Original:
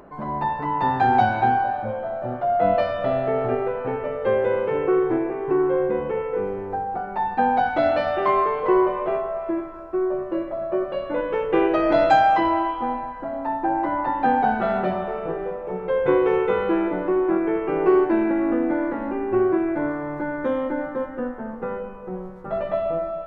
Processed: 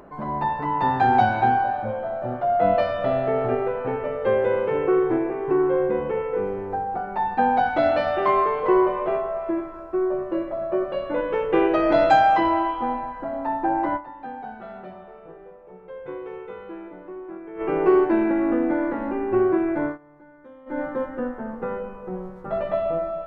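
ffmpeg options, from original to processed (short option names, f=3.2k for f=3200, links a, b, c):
-filter_complex "[0:a]asplit=5[a][b][c][d][e];[a]atrim=end=14.16,asetpts=PTS-STARTPTS,afade=t=out:st=13.96:d=0.2:c=exp:silence=0.158489[f];[b]atrim=start=14.16:end=17.41,asetpts=PTS-STARTPTS,volume=-16dB[g];[c]atrim=start=17.41:end=19.98,asetpts=PTS-STARTPTS,afade=t=in:d=0.2:c=exp:silence=0.158489,afade=t=out:st=2.4:d=0.17:c=qsin:silence=0.0749894[h];[d]atrim=start=19.98:end=20.66,asetpts=PTS-STARTPTS,volume=-22.5dB[i];[e]atrim=start=20.66,asetpts=PTS-STARTPTS,afade=t=in:d=0.17:c=qsin:silence=0.0749894[j];[f][g][h][i][j]concat=n=5:v=0:a=1"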